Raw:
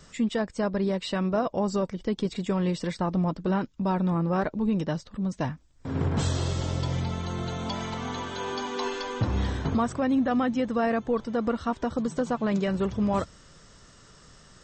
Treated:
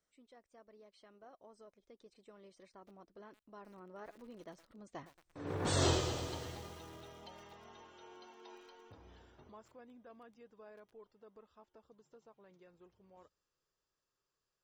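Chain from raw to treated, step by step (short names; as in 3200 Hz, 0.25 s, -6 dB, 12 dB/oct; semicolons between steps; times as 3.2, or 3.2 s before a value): Doppler pass-by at 5.86, 29 m/s, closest 2.8 m; resonant low shelf 280 Hz -7 dB, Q 1.5; lo-fi delay 0.114 s, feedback 80%, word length 9-bit, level -12 dB; gain +2.5 dB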